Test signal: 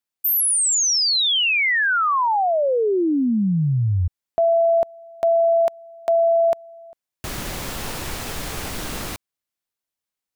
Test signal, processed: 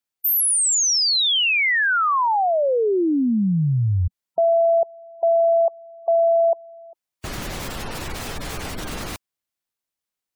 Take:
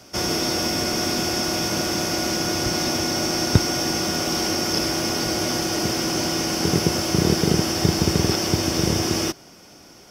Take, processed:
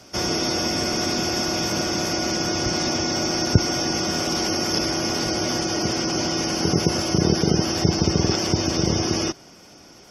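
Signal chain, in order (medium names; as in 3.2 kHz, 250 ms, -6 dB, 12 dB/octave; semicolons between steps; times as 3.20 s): spectral gate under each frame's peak -25 dB strong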